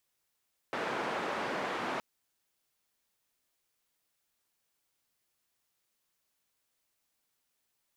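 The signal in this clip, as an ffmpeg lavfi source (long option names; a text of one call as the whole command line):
ffmpeg -f lavfi -i "anoisesrc=color=white:duration=1.27:sample_rate=44100:seed=1,highpass=frequency=230,lowpass=frequency=1300,volume=-17.5dB" out.wav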